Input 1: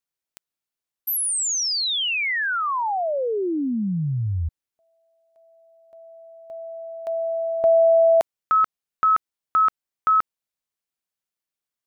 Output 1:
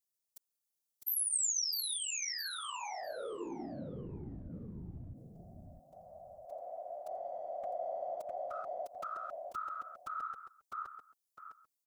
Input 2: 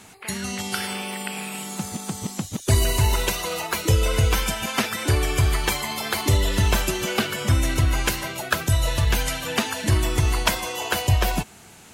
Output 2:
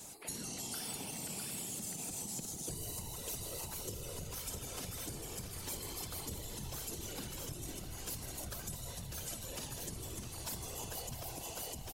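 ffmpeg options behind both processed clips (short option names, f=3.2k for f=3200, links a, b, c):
-filter_complex "[0:a]equalizer=f=1.8k:t=o:w=2.1:g=-10,asplit=2[a][b];[b]aecho=0:1:655|1310|1965:0.531|0.0956|0.0172[c];[a][c]amix=inputs=2:normalize=0,acompressor=threshold=-36dB:ratio=5:attack=0.6:release=48:knee=6:detection=rms,bass=f=250:g=-5,treble=f=4k:g=7,afftfilt=real='hypot(re,im)*cos(2*PI*random(0))':imag='hypot(re,im)*sin(2*PI*random(1))':win_size=512:overlap=0.75,volume=2dB"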